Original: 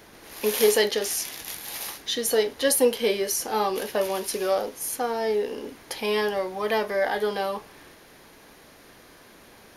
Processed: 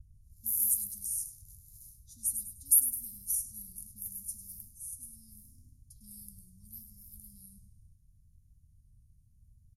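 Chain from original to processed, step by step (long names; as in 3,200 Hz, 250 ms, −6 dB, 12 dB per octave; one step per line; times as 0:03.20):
pitch vibrato 0.75 Hz 49 cents
repeating echo 103 ms, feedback 38%, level −10 dB
low-pass that shuts in the quiet parts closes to 2,600 Hz, open at −19.5 dBFS
inverse Chebyshev band-stop filter 410–2,900 Hz, stop band 70 dB
level +4 dB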